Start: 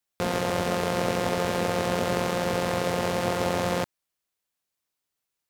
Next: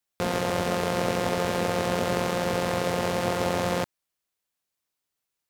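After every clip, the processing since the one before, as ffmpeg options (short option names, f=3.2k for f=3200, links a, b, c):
-af anull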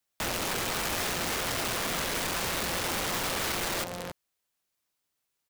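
-filter_complex "[0:a]asplit=2[a][b];[b]asoftclip=type=tanh:threshold=-22.5dB,volume=-12dB[c];[a][c]amix=inputs=2:normalize=0,aecho=1:1:274:0.237,aeval=exprs='(mod(20*val(0)+1,2)-1)/20':c=same"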